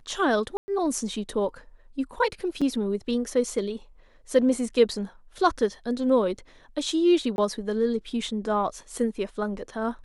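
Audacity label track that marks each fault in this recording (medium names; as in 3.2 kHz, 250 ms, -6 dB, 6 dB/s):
0.570000	0.680000	dropout 110 ms
2.610000	2.620000	dropout 5.9 ms
7.360000	7.380000	dropout 21 ms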